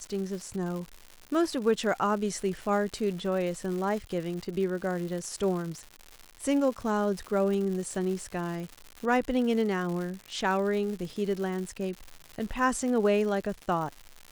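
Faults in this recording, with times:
crackle 210/s -35 dBFS

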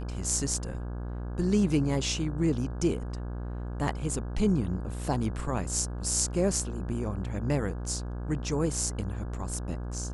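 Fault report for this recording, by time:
buzz 60 Hz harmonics 28 -35 dBFS

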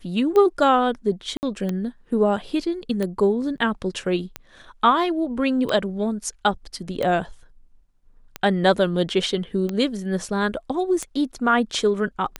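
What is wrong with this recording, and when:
tick 45 rpm -13 dBFS
1.37–1.43 gap 59 ms
3.57–3.58 gap 9.4 ms

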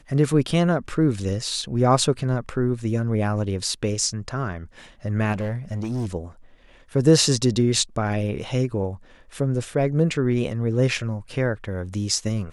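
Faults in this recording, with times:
5.32–6.06 clipped -22.5 dBFS

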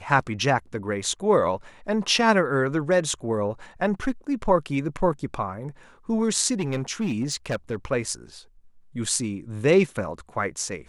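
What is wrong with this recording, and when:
6.59–7.76 clipped -21 dBFS

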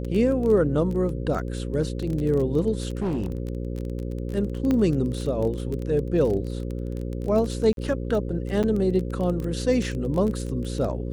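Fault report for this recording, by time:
buzz 60 Hz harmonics 9 -30 dBFS
crackle 19/s -28 dBFS
2.85–3.49 clipped -22 dBFS
4.71 pop -13 dBFS
7.73–7.77 gap 42 ms
8.63–8.64 gap 7.1 ms

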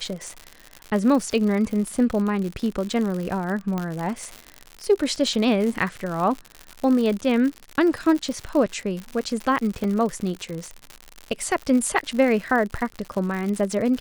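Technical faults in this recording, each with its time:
crackle 110/s -27 dBFS
3.78 pop -14 dBFS
9.84 gap 2.2 ms

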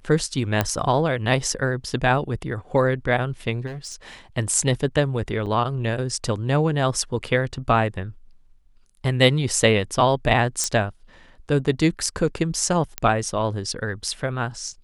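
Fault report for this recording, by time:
0.61 pop -6 dBFS
3.66–4.08 clipped -30 dBFS
5.46–5.47 gap 6.9 ms
10.64 pop -8 dBFS
12.98 pop -8 dBFS

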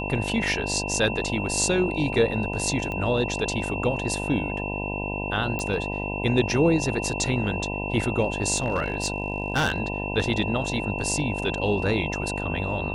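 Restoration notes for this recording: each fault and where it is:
buzz 50 Hz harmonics 20 -31 dBFS
tone 2700 Hz -32 dBFS
2.92 pop -19 dBFS
5.59 pop -15 dBFS
8.56–9.8 clipped -18 dBFS

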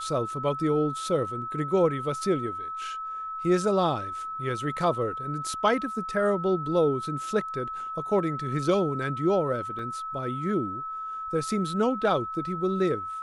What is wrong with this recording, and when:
tone 1300 Hz -32 dBFS
9.79 gap 2.2 ms

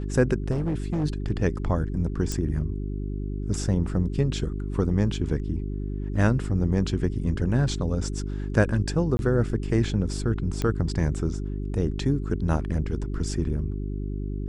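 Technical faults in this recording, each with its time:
hum 50 Hz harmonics 8 -30 dBFS
0.5–1.05 clipped -22 dBFS
2.32 pop
9.17–9.19 gap 21 ms
10.62 pop -14 dBFS

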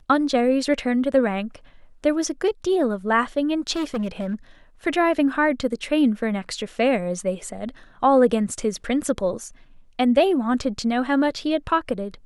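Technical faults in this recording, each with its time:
3.72–4.35 clipped -21.5 dBFS

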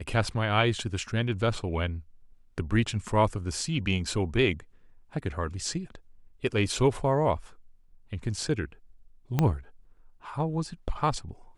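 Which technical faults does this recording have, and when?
9.39 pop -11 dBFS

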